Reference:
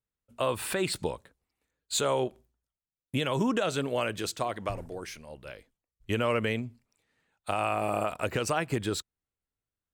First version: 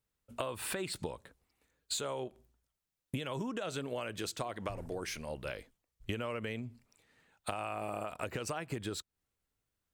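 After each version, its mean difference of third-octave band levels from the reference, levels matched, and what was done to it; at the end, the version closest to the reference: 3.5 dB: compression 12:1, threshold -40 dBFS, peak gain reduction 17.5 dB; trim +5.5 dB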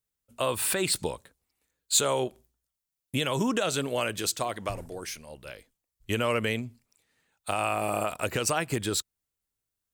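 2.5 dB: treble shelf 4.4 kHz +10.5 dB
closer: second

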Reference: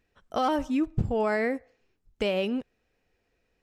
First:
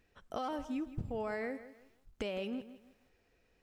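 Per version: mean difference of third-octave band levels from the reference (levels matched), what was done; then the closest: 4.5 dB: compression 2.5:1, threshold -44 dBFS, peak gain reduction 15.5 dB; bit-crushed delay 162 ms, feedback 35%, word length 11-bit, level -14 dB; trim +1.5 dB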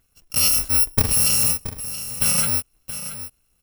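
17.0 dB: bit-reversed sample order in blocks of 128 samples; on a send: delay 676 ms -12 dB; on the sum: trim +7.5 dB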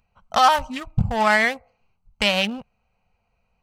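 6.5 dB: local Wiener filter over 25 samples; FFT filter 210 Hz 0 dB, 310 Hz -21 dB, 830 Hz +7 dB, 6.3 kHz +13 dB; trim +6.5 dB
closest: first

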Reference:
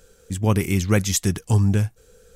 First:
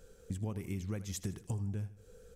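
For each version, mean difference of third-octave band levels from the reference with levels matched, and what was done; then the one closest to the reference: 4.5 dB: tilt shelf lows +3.5 dB; compression 12:1, threshold -28 dBFS, peak gain reduction 18 dB; feedback delay 79 ms, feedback 43%, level -15.5 dB; trim -6.5 dB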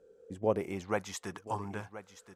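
7.0 dB: treble shelf 5.7 kHz +8 dB; band-pass sweep 400 Hz -> 990 Hz, 0.12–1.14 s; delay 1027 ms -14 dB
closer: first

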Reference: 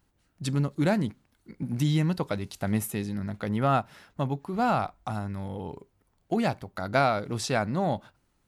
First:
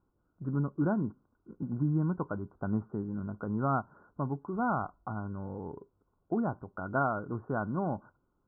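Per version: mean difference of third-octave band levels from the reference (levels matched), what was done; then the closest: 8.5 dB: dynamic bell 490 Hz, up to -6 dB, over -41 dBFS, Q 2; rippled Chebyshev low-pass 1.5 kHz, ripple 6 dB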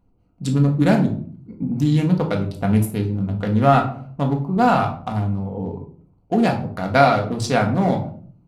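6.0 dB: local Wiener filter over 25 samples; simulated room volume 450 m³, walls furnished, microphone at 1.8 m; trim +6 dB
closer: second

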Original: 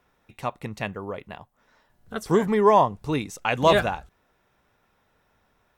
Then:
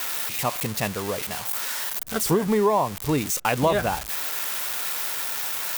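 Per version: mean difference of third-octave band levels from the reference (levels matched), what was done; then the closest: 11.5 dB: zero-crossing glitches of -16.5 dBFS; treble shelf 2.6 kHz -8 dB; compression 5:1, threshold -22 dBFS, peak gain reduction 9 dB; trim +4.5 dB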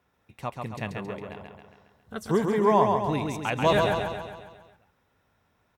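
6.0 dB: high-pass 80 Hz; bass shelf 110 Hz +10 dB; on a send: feedback delay 136 ms, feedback 54%, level -4 dB; on the sum: trim -5 dB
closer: second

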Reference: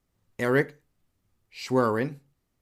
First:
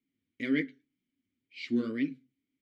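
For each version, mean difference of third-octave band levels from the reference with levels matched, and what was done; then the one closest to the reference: 8.5 dB: wow and flutter 120 cents; dynamic bell 4.1 kHz, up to +7 dB, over -49 dBFS, Q 1.1; vowel filter i; flange 1.9 Hz, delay 4.5 ms, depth 6.3 ms, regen -33%; trim +9 dB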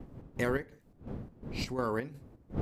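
6.5 dB: wind noise 230 Hz -39 dBFS; expander -56 dBFS; compression 6:1, threshold -27 dBFS, peak gain reduction 10 dB; square tremolo 2.8 Hz, depth 60%, duty 60%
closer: second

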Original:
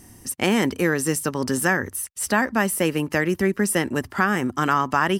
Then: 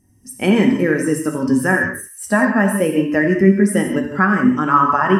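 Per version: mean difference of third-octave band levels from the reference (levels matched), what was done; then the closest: 9.0 dB: peaking EQ 580 Hz +2.5 dB 0.24 oct; band-passed feedback delay 85 ms, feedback 43%, band-pass 2.2 kHz, level -10.5 dB; gated-style reverb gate 210 ms flat, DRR 1 dB; spectral contrast expander 1.5:1; trim +2.5 dB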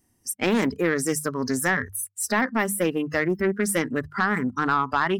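6.5 dB: spectral noise reduction 20 dB; hum notches 50/100/150/200 Hz; saturation -11.5 dBFS, distortion -17 dB; loudspeaker Doppler distortion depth 0.21 ms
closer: second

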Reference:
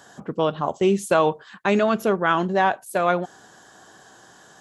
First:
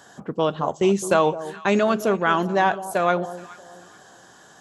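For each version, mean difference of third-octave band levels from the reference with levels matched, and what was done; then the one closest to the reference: 3.0 dB: dynamic bell 6.3 kHz, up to +5 dB, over -50 dBFS, Q 1.7; on a send: echo whose repeats swap between lows and highs 211 ms, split 950 Hz, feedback 51%, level -13 dB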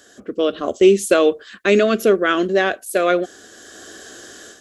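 4.0 dB: level rider gain up to 11 dB; static phaser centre 370 Hz, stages 4; trim +3 dB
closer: first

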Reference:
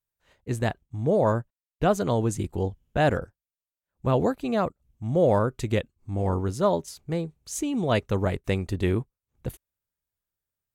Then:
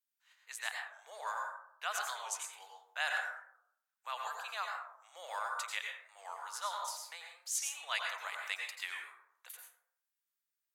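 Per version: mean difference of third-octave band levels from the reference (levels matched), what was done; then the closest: 21.0 dB: Bessel high-pass 1.6 kHz, order 6; plate-style reverb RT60 0.68 s, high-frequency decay 0.45×, pre-delay 80 ms, DRR 0.5 dB; warped record 45 rpm, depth 100 cents; trim -2 dB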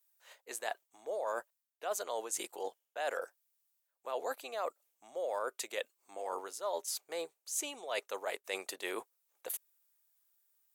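13.0 dB: high-pass 530 Hz 24 dB/octave; treble shelf 5.9 kHz +12 dB; reverse; compression 4:1, threshold -41 dBFS, peak gain reduction 18.5 dB; reverse; trim +4 dB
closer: second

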